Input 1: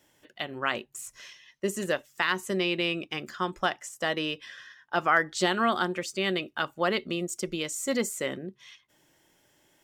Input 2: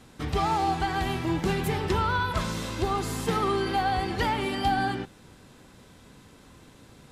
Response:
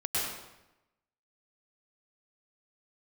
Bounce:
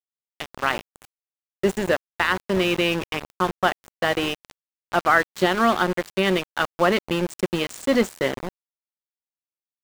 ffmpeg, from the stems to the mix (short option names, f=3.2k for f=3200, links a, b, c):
-filter_complex "[0:a]highshelf=f=4.4k:g=-3.5,dynaudnorm=f=150:g=5:m=11dB,volume=-2dB[a];[1:a]highpass=75,adelay=200,volume=-9.5dB[b];[a][b]amix=inputs=2:normalize=0,lowshelf=f=65:g=7.5,aeval=exprs='val(0)*gte(abs(val(0)),0.0708)':c=same,highshelf=f=4.1k:g=-8"